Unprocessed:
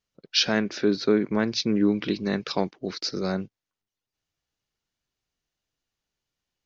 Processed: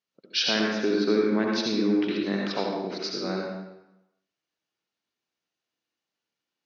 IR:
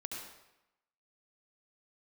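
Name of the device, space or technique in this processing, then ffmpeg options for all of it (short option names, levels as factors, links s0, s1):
supermarket ceiling speaker: -filter_complex "[0:a]highpass=220,lowpass=5800[s0];[1:a]atrim=start_sample=2205[s1];[s0][s1]afir=irnorm=-1:irlink=0,volume=1.12"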